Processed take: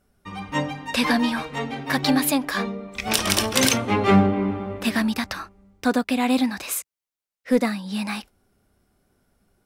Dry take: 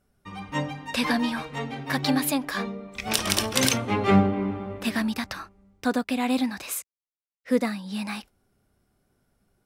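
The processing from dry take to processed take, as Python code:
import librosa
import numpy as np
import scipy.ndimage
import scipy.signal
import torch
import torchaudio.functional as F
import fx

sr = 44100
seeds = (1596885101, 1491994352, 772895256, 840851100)

p1 = fx.peak_eq(x, sr, hz=130.0, db=-5.5, octaves=0.32)
p2 = np.clip(p1, -10.0 ** (-17.0 / 20.0), 10.0 ** (-17.0 / 20.0))
y = p1 + (p2 * 10.0 ** (-4.5 / 20.0))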